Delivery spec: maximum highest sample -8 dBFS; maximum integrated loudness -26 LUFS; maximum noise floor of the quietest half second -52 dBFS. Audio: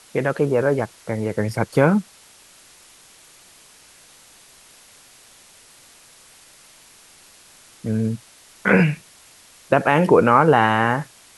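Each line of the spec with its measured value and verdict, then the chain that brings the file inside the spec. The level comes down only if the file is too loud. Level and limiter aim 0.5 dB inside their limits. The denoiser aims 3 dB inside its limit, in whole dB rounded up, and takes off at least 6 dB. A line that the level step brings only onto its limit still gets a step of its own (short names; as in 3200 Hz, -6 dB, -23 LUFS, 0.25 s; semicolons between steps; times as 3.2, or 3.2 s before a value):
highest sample -1.5 dBFS: fail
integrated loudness -19.0 LUFS: fail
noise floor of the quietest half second -50 dBFS: fail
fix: gain -7.5 dB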